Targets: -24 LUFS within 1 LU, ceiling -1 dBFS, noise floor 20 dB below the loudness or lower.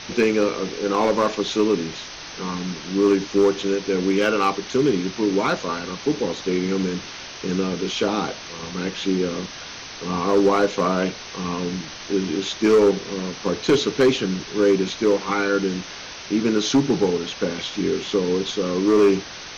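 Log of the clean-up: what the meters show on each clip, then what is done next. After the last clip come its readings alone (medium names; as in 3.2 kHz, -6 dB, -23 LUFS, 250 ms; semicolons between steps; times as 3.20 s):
clipped samples 0.6%; clipping level -10.5 dBFS; noise floor -37 dBFS; noise floor target -42 dBFS; loudness -22.0 LUFS; peak level -10.5 dBFS; loudness target -24.0 LUFS
-> clip repair -10.5 dBFS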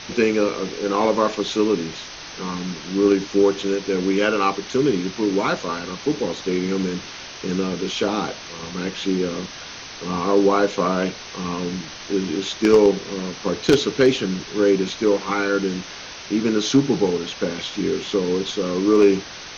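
clipped samples 0.0%; noise floor -37 dBFS; noise floor target -42 dBFS
-> noise print and reduce 6 dB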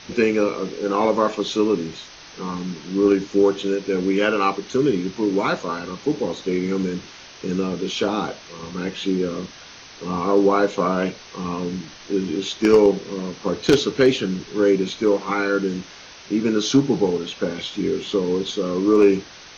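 noise floor -43 dBFS; loudness -21.5 LUFS; peak level -1.5 dBFS; loudness target -24.0 LUFS
-> trim -2.5 dB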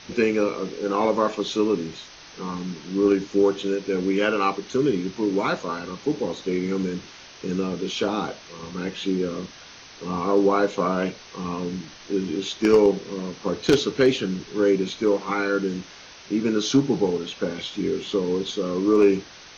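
loudness -24.0 LUFS; peak level -4.0 dBFS; noise floor -45 dBFS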